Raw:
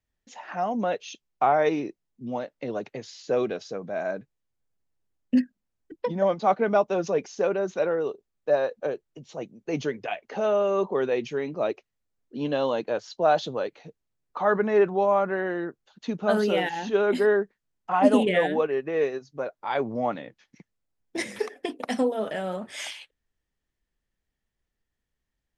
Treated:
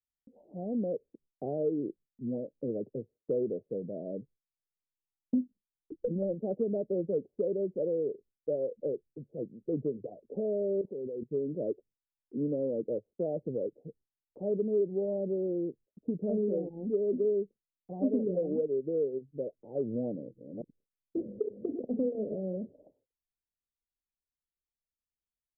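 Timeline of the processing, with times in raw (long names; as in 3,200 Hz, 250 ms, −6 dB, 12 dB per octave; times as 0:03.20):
0:05.41–0:06.34: gap after every zero crossing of 0.2 ms
0:10.81–0:11.31: output level in coarse steps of 18 dB
0:20.07–0:22.35: delay that plays each chunk backwards 275 ms, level −5.5 dB
whole clip: Butterworth low-pass 530 Hz 48 dB per octave; downward compressor 2.5 to 1, threshold −29 dBFS; noise gate with hold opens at −59 dBFS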